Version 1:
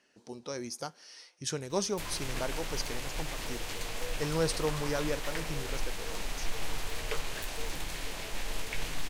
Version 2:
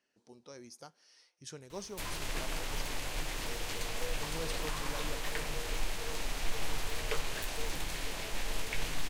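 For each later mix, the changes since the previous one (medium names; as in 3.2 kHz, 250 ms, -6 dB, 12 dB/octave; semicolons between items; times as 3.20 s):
speech -12.0 dB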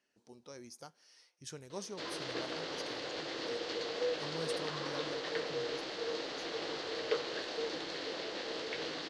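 background: add cabinet simulation 260–5000 Hz, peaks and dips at 330 Hz +8 dB, 490 Hz +9 dB, 930 Hz -4 dB, 2.4 kHz -7 dB, 4.4 kHz +5 dB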